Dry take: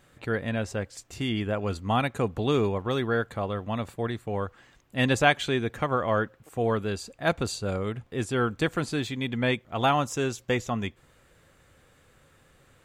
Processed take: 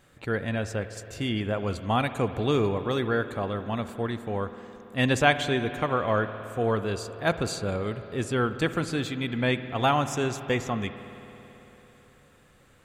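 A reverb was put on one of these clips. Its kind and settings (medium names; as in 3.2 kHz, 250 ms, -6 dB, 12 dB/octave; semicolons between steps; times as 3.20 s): spring tank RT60 3.7 s, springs 55 ms, chirp 30 ms, DRR 11 dB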